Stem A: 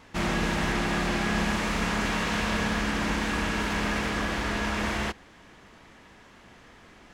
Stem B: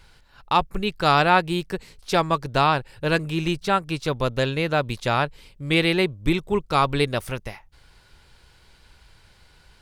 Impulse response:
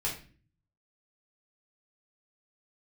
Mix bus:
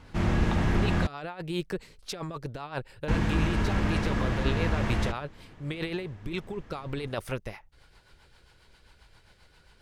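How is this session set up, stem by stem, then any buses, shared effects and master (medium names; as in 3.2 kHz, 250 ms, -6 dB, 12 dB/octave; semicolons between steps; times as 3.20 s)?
-4.0 dB, 0.00 s, muted 1.07–3.08 s, no send, octave divider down 1 oct, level -2 dB; tilt EQ -2 dB/octave
-8.5 dB, 0.00 s, no send, peaking EQ 810 Hz +4.5 dB 2.7 oct; compressor with a negative ratio -23 dBFS, ratio -1; rotary cabinet horn 7.5 Hz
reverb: none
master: none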